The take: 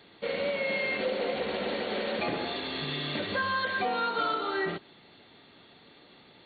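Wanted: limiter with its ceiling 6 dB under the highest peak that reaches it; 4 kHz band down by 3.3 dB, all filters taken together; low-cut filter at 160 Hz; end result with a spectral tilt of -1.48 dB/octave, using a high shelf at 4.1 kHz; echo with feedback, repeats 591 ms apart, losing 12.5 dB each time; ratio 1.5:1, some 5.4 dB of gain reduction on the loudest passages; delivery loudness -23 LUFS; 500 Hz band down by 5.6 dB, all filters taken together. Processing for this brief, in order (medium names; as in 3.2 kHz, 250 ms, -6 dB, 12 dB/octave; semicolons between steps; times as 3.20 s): high-pass 160 Hz; peaking EQ 500 Hz -6.5 dB; peaking EQ 4 kHz -7 dB; treble shelf 4.1 kHz +6 dB; compression 1.5:1, threshold -42 dBFS; peak limiter -31.5 dBFS; feedback delay 591 ms, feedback 24%, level -12.5 dB; trim +16.5 dB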